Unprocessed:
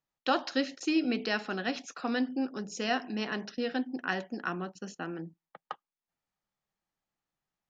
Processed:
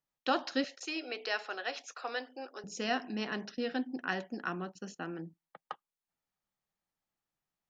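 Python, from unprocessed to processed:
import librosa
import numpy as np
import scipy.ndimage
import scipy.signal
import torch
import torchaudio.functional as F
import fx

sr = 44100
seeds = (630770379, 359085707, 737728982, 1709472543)

y = fx.highpass(x, sr, hz=440.0, slope=24, at=(0.64, 2.64))
y = y * 10.0 ** (-2.5 / 20.0)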